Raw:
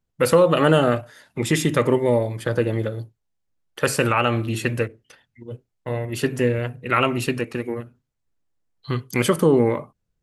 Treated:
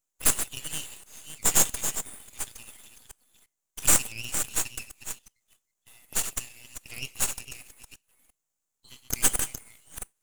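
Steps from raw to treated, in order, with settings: chunks repeated in reverse 346 ms, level -9 dB; steep high-pass 2.8 kHz 36 dB/octave; resonant high shelf 5.4 kHz +9 dB, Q 3; on a send at -20 dB: reverberation RT60 0.40 s, pre-delay 5 ms; on the sum: half-wave rectifier; trim +1.5 dB

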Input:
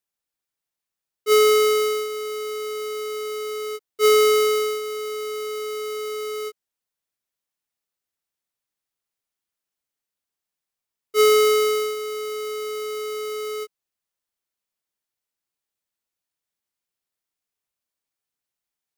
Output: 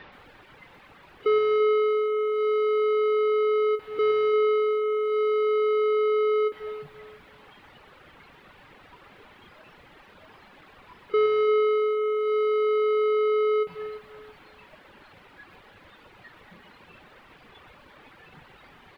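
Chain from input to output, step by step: jump at every zero crossing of -31 dBFS; reverb removal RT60 1.6 s; band-stop 670 Hz, Q 12; spectral noise reduction 14 dB; in parallel at +1.5 dB: compression, threshold -41 dBFS, peak gain reduction 23.5 dB; on the sum: hard clipper -26.5 dBFS, distortion -3 dB; Gaussian low-pass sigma 3.4 samples; on a send: feedback delay 342 ms, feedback 28%, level -14 dB; on the sum: bit-crushed delay 123 ms, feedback 35%, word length 11-bit, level -11 dB; trim +7.5 dB

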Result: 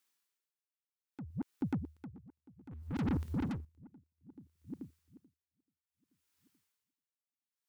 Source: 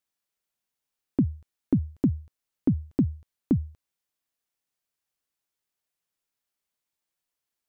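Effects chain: backward echo that repeats 217 ms, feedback 64%, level -8.5 dB; compression 4:1, threshold -25 dBFS, peak gain reduction 8 dB; high-pass 320 Hz 6 dB/octave; saturation -34 dBFS, distortion -7 dB; 2.71–3.65 s: waveshaping leveller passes 3; peaking EQ 640 Hz -12.5 dB 0.39 oct; logarithmic tremolo 0.62 Hz, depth 25 dB; trim +7 dB

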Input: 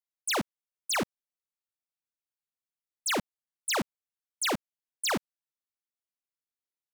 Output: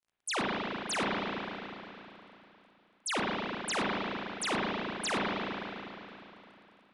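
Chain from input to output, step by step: crackle 32 per s -54 dBFS; spring tank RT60 3.1 s, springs 35/50 ms, chirp 70 ms, DRR -5 dB; trim -5 dB; MP3 128 kbps 24 kHz

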